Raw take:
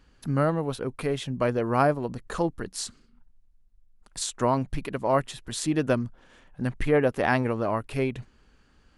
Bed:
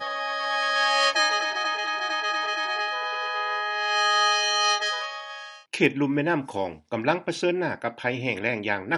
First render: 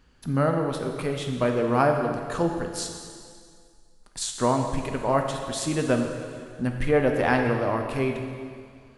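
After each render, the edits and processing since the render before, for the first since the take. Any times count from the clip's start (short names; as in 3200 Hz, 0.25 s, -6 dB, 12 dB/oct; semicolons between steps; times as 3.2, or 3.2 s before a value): plate-style reverb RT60 2.1 s, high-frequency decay 0.95×, DRR 3 dB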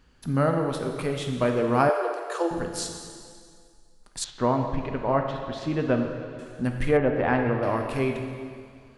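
1.89–2.51 steep high-pass 330 Hz 96 dB/oct; 4.24–6.39 air absorption 260 m; 6.97–7.63 air absorption 370 m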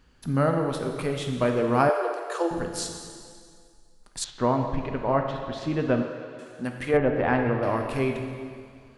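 6.02–6.94 HPF 320 Hz 6 dB/oct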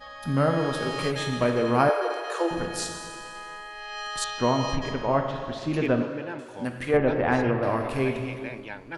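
add bed -12.5 dB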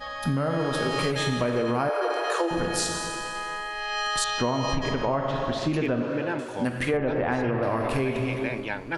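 in parallel at +2 dB: limiter -19.5 dBFS, peak gain reduction 11 dB; on the sum: compressor, threshold -22 dBFS, peak gain reduction 9.5 dB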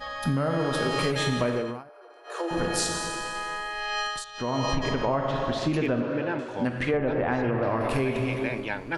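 1.48–2.6 dip -24 dB, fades 0.36 s; 4–4.58 dip -15.5 dB, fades 0.25 s; 6.01–7.81 air absorption 90 m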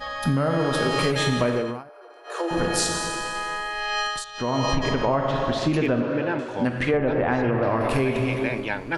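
gain +3.5 dB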